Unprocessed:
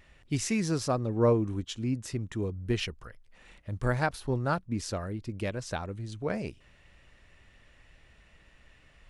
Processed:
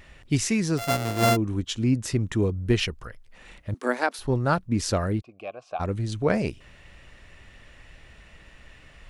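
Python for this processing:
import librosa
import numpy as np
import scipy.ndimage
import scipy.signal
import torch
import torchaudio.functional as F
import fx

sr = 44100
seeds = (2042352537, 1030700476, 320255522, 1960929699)

y = fx.sample_sort(x, sr, block=64, at=(0.77, 1.35), fade=0.02)
y = fx.vowel_filter(y, sr, vowel='a', at=(5.2, 5.79), fade=0.02)
y = fx.rider(y, sr, range_db=4, speed_s=0.5)
y = fx.cheby1_highpass(y, sr, hz=230.0, order=5, at=(3.74, 4.19))
y = y * librosa.db_to_amplitude(6.0)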